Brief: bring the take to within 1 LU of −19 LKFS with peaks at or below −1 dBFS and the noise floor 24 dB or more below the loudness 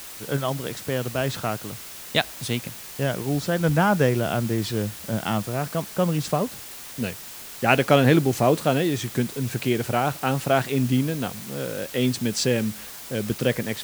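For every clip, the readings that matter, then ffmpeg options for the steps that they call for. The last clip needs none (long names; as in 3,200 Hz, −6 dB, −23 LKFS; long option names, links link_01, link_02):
background noise floor −39 dBFS; target noise floor −48 dBFS; integrated loudness −24.0 LKFS; sample peak −2.0 dBFS; target loudness −19.0 LKFS
→ -af "afftdn=noise_reduction=9:noise_floor=-39"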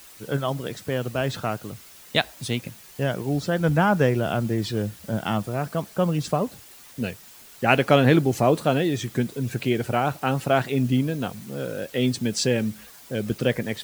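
background noise floor −47 dBFS; target noise floor −49 dBFS
→ -af "afftdn=noise_reduction=6:noise_floor=-47"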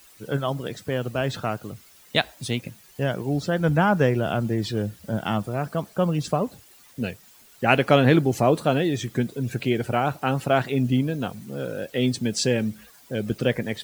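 background noise floor −53 dBFS; integrated loudness −24.5 LKFS; sample peak −2.0 dBFS; target loudness −19.0 LKFS
→ -af "volume=5.5dB,alimiter=limit=-1dB:level=0:latency=1"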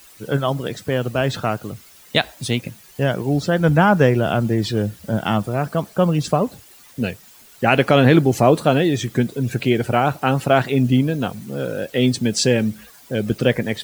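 integrated loudness −19.5 LKFS; sample peak −1.0 dBFS; background noise floor −47 dBFS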